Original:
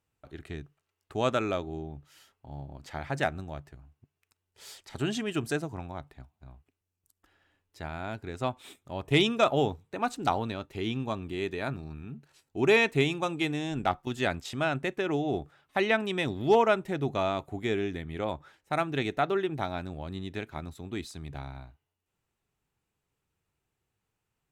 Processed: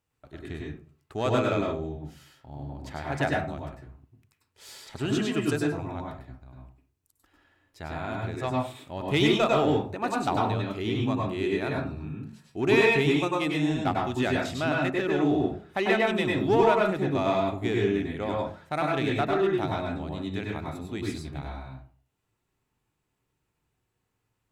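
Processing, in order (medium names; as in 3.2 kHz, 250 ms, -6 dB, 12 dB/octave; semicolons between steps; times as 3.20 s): in parallel at -5 dB: hard clipper -25 dBFS, distortion -8 dB; on the sum: reverberation RT60 0.45 s, pre-delay 94 ms, DRR -1.5 dB; trim -4 dB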